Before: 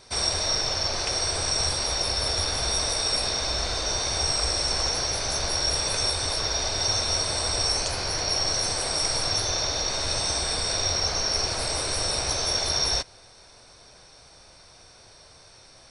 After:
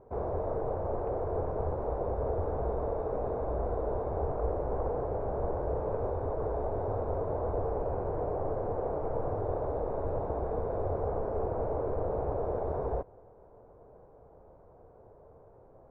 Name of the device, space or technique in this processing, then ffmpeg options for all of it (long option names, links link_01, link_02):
under water: -af "lowpass=frequency=920:width=0.5412,lowpass=frequency=920:width=1.3066,equalizer=frequency=450:width_type=o:width=0.51:gain=8,volume=-1.5dB"